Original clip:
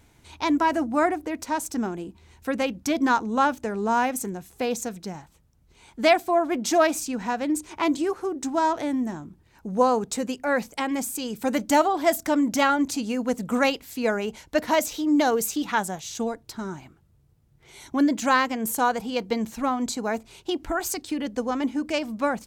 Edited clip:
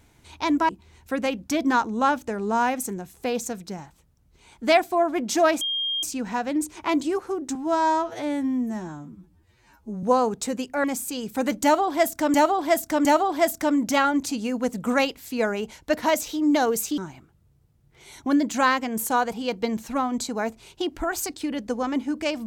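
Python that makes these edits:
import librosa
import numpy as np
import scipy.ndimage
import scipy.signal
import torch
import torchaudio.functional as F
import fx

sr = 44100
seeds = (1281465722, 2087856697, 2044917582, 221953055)

y = fx.edit(x, sr, fx.cut(start_s=0.69, length_s=1.36),
    fx.insert_tone(at_s=6.97, length_s=0.42, hz=3220.0, db=-23.5),
    fx.stretch_span(start_s=8.49, length_s=1.24, factor=2.0),
    fx.cut(start_s=10.54, length_s=0.37),
    fx.repeat(start_s=11.7, length_s=0.71, count=3),
    fx.cut(start_s=15.63, length_s=1.03), tone=tone)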